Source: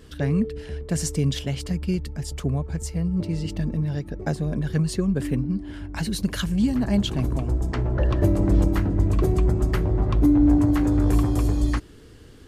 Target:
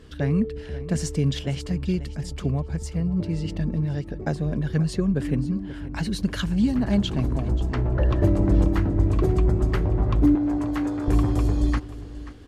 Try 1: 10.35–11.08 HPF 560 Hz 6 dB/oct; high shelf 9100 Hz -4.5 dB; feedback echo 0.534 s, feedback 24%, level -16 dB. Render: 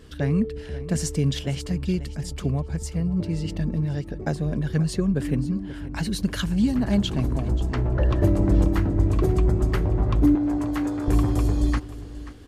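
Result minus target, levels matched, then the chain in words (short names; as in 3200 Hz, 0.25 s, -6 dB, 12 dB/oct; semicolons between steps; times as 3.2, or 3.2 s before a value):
8000 Hz band +3.5 dB
10.35–11.08 HPF 560 Hz 6 dB/oct; high shelf 9100 Hz -14 dB; feedback echo 0.534 s, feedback 24%, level -16 dB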